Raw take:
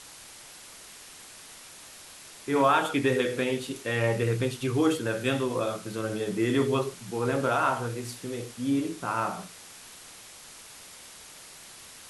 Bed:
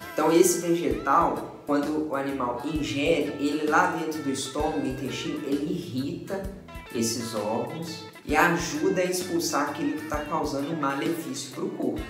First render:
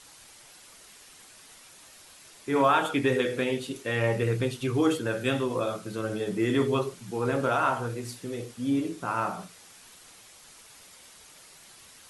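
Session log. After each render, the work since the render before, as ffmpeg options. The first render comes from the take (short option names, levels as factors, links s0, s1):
-af "afftdn=nr=6:nf=-48"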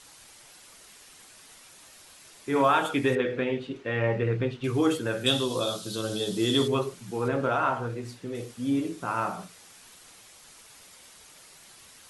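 -filter_complex "[0:a]asettb=1/sr,asplit=3[s0][s1][s2];[s0]atrim=end=3.154[s3];[s1]atrim=start=3.15:end=4.64,asetpts=PTS-STARTPTS,afade=t=in:d=0.004:c=qsin,afade=t=out:st=1.486:d=0.004:c=qsin,lowpass=2700[s4];[s2]atrim=start=4.636[s5];[s3][s4]acrossfade=d=0.004:c1=hsin:c2=qsin[s6];[s6][s5]acrossfade=d=0.004:c1=qsin:c2=hsin,asettb=1/sr,asplit=3[s7][s8][s9];[s7]atrim=end=5.264[s10];[s8]atrim=start=5.26:end=6.68,asetpts=PTS-STARTPTS,afade=t=in:d=0.004:c=qsin,afade=t=out:st=1.416:d=0.004:c=qsin,highshelf=f=2800:t=q:w=3:g=8[s11];[s9]atrim=start=6.676[s12];[s10][s11]acrossfade=d=0.004:c1=hsin:c2=qsin[s13];[s13][s12]acrossfade=d=0.004:c1=qsin:c2=hsin,asettb=1/sr,asplit=3[s14][s15][s16];[s14]atrim=end=7.284[s17];[s15]atrim=start=7.28:end=8.35,asetpts=PTS-STARTPTS,afade=t=in:d=0.004:c=qsin,afade=t=out:st=1.066:d=0.004:c=qsin,aemphasis=mode=reproduction:type=50kf[s18];[s16]atrim=start=8.346[s19];[s17][s18]acrossfade=d=0.004:c1=hsin:c2=qsin[s20];[s20][s19]acrossfade=d=0.004:c1=qsin:c2=hsin"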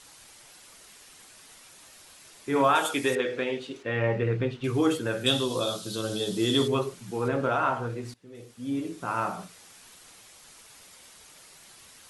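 -filter_complex "[0:a]asettb=1/sr,asplit=3[s0][s1][s2];[s0]atrim=end=2.754[s3];[s1]atrim=start=2.75:end=3.83,asetpts=PTS-STARTPTS,afade=t=in:d=0.004:c=qsin,afade=t=out:st=1.076:d=0.004:c=qsin,bass=f=250:g=-9,treble=f=4000:g=10[s4];[s2]atrim=start=3.826[s5];[s3][s4]acrossfade=d=0.004:c1=hsin:c2=qsin[s6];[s6][s5]acrossfade=d=0.004:c1=qsin:c2=hsin,asplit=2[s7][s8];[s7]atrim=end=8.14,asetpts=PTS-STARTPTS,afade=t=out:st=8.136:d=0.004:c=hsin:silence=0.1[s9];[s8]atrim=start=8.14,asetpts=PTS-STARTPTS,afade=t=in:d=1.01:silence=0.1[s10];[s9][s10]concat=n=2:v=0:a=1"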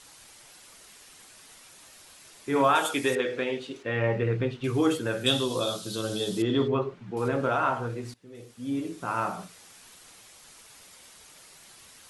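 -filter_complex "[0:a]asettb=1/sr,asplit=3[s0][s1][s2];[s0]atrim=end=6.424[s3];[s1]atrim=start=6.42:end=7.17,asetpts=PTS-STARTPTS,afade=t=in:d=0.004:c=qsin,afade=t=out:st=0.746:d=0.004:c=qsin,lowpass=2100[s4];[s2]atrim=start=7.166[s5];[s3][s4]acrossfade=d=0.004:c1=hsin:c2=qsin[s6];[s6][s5]acrossfade=d=0.004:c1=qsin:c2=hsin"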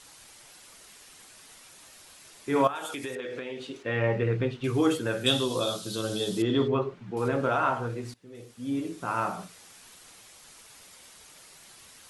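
-filter_complex "[0:a]asettb=1/sr,asplit=3[s0][s1][s2];[s0]atrim=end=2.674[s3];[s1]atrim=start=2.67:end=3.77,asetpts=PTS-STARTPTS,afade=t=in:d=0.004:c=qsin,afade=t=out:st=1.096:d=0.004:c=qsin,acompressor=threshold=0.0251:ratio=6:attack=3.2:release=140:knee=1:detection=peak[s4];[s2]atrim=start=3.766[s5];[s3][s4]acrossfade=d=0.004:c1=hsin:c2=qsin[s6];[s6][s5]acrossfade=d=0.004:c1=qsin:c2=hsin"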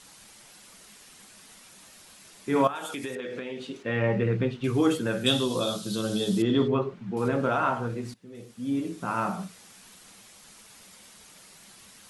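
-af "equalizer=f=200:t=o:w=0.45:g=10.5"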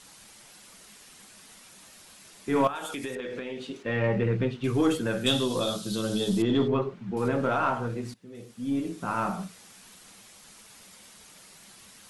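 -af "asoftclip=type=tanh:threshold=0.237,aeval=exprs='0.224*(cos(1*acos(clip(val(0)/0.224,-1,1)))-cos(1*PI/2))+0.00501*(cos(4*acos(clip(val(0)/0.224,-1,1)))-cos(4*PI/2))+0.00158*(cos(8*acos(clip(val(0)/0.224,-1,1)))-cos(8*PI/2))':c=same"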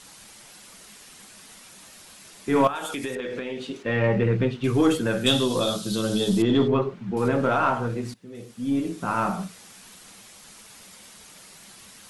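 -af "volume=1.58"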